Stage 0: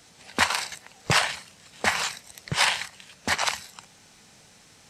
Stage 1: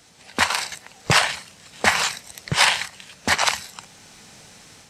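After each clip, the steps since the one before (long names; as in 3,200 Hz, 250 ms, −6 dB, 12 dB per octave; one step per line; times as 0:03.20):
automatic gain control gain up to 6.5 dB
level +1 dB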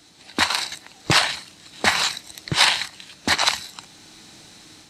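thirty-one-band graphic EQ 315 Hz +12 dB, 500 Hz −4 dB, 4,000 Hz +8 dB
level −1.5 dB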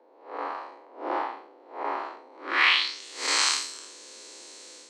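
spectrum smeared in time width 158 ms
frequency shifter +200 Hz
low-pass filter sweep 780 Hz → 7,700 Hz, 0:02.30–0:03.06
level −1.5 dB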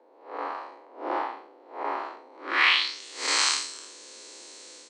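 downsampling to 22,050 Hz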